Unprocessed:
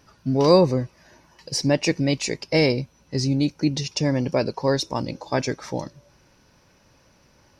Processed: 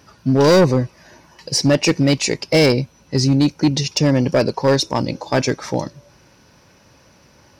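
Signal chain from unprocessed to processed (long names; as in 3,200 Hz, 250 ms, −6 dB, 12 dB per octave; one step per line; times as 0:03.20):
high-pass filter 57 Hz 12 dB per octave
hard clipping −15.5 dBFS, distortion −11 dB
level +7 dB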